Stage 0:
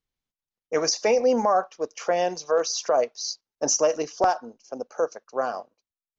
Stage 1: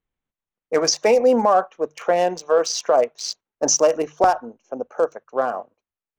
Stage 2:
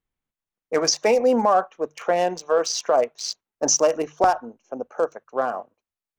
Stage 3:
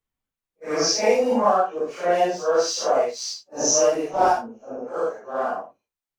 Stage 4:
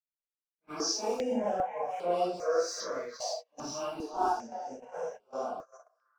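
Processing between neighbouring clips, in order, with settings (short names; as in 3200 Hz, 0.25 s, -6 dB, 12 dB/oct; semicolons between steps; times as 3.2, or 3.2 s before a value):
Wiener smoothing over 9 samples; notches 50/100/150 Hz; gain +5 dB
bell 510 Hz -2 dB; gain -1 dB
phase scrambler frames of 0.2 s
delay with a stepping band-pass 0.336 s, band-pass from 820 Hz, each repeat 0.7 oct, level -7 dB; gate -30 dBFS, range -21 dB; step phaser 2.5 Hz 370–6300 Hz; gain -8 dB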